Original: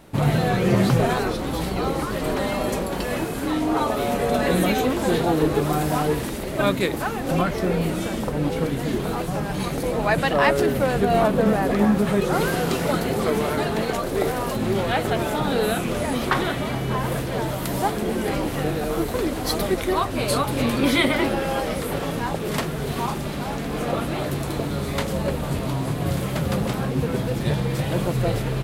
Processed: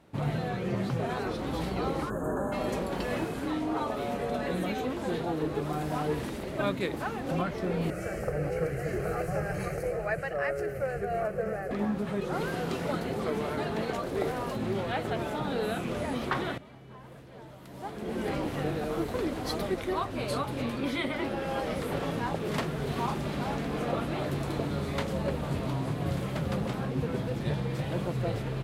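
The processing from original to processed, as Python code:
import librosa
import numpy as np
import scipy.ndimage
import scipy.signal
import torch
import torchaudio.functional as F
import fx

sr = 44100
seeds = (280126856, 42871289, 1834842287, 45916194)

y = fx.spec_box(x, sr, start_s=2.1, length_s=0.43, low_hz=1800.0, high_hz=6300.0, gain_db=-29)
y = fx.fixed_phaser(y, sr, hz=960.0, stages=6, at=(7.9, 11.71))
y = fx.edit(y, sr, fx.fade_in_from(start_s=16.58, length_s=3.34, curve='qua', floor_db=-16.0), tone=tone)
y = scipy.signal.sosfilt(scipy.signal.butter(2, 49.0, 'highpass', fs=sr, output='sos'), y)
y = fx.high_shelf(y, sr, hz=7200.0, db=-11.0)
y = fx.rider(y, sr, range_db=10, speed_s=0.5)
y = y * librosa.db_to_amplitude(-8.0)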